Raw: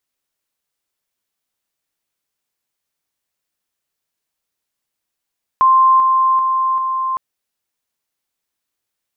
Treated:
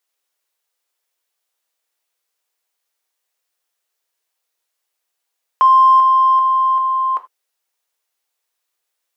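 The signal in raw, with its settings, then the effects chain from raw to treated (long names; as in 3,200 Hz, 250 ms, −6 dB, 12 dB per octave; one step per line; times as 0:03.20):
level staircase 1,050 Hz −7.5 dBFS, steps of −3 dB, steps 4, 0.39 s 0.00 s
high-pass filter 390 Hz 24 dB per octave
in parallel at −9.5 dB: soft clipping −16.5 dBFS
on the sum: reverb whose tail is shaped and stops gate 110 ms falling, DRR 7.5 dB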